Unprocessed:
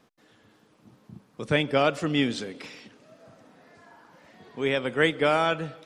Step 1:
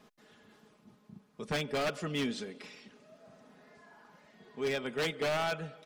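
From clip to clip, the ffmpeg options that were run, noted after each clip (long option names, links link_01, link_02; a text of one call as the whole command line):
ffmpeg -i in.wav -af "aecho=1:1:4.8:0.55,areverse,acompressor=mode=upward:threshold=-44dB:ratio=2.5,areverse,aeval=exprs='0.133*(abs(mod(val(0)/0.133+3,4)-2)-1)':channel_layout=same,volume=-8dB" out.wav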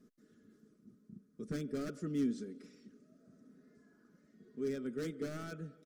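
ffmpeg -i in.wav -af "firequalizer=gain_entry='entry(140,0);entry(280,7);entry(880,-27);entry(1300,-7);entry(2700,-19);entry(5800,-5)':delay=0.05:min_phase=1,volume=-4dB" out.wav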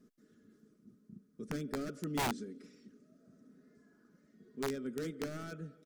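ffmpeg -i in.wav -af "aeval=exprs='(mod(28.2*val(0)+1,2)-1)/28.2':channel_layout=same" out.wav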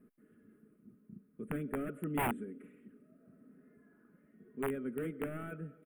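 ffmpeg -i in.wav -af "asuperstop=centerf=5200:order=8:qfactor=0.83,volume=1dB" out.wav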